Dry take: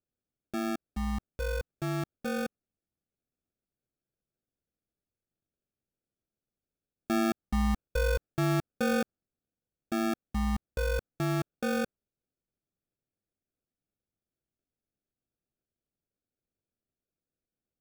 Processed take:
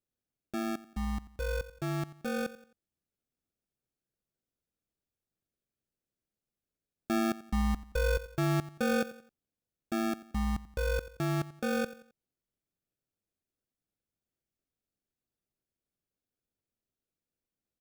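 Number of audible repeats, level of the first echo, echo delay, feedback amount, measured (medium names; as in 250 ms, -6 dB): 3, -17.0 dB, 88 ms, 39%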